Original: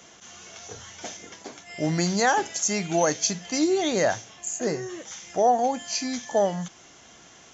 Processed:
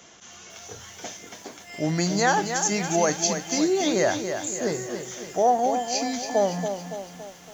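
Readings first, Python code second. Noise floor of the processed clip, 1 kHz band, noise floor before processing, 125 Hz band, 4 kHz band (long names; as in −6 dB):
−47 dBFS, +1.0 dB, −51 dBFS, +1.0 dB, +1.0 dB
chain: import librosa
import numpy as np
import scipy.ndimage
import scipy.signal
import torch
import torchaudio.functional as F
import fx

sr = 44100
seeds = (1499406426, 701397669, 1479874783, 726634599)

y = fx.echo_crushed(x, sr, ms=281, feedback_pct=55, bits=8, wet_db=-7.5)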